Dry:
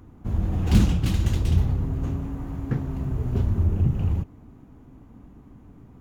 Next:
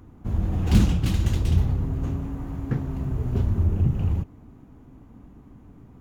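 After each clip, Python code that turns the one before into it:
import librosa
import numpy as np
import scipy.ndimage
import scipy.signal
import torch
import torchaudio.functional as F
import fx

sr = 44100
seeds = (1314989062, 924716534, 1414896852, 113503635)

y = x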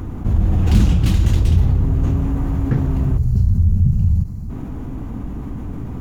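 y = fx.low_shelf(x, sr, hz=91.0, db=6.0)
y = fx.spec_box(y, sr, start_s=3.17, length_s=1.33, low_hz=220.0, high_hz=4000.0, gain_db=-15)
y = fx.env_flatten(y, sr, amount_pct=50)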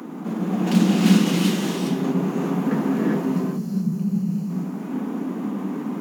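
y = scipy.signal.sosfilt(scipy.signal.butter(12, 170.0, 'highpass', fs=sr, output='sos'), x)
y = fx.rev_gated(y, sr, seeds[0], gate_ms=430, shape='rising', drr_db=-4.0)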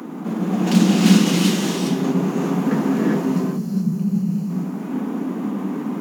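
y = fx.dynamic_eq(x, sr, hz=6000.0, q=0.9, threshold_db=-47.0, ratio=4.0, max_db=4)
y = y * librosa.db_to_amplitude(2.5)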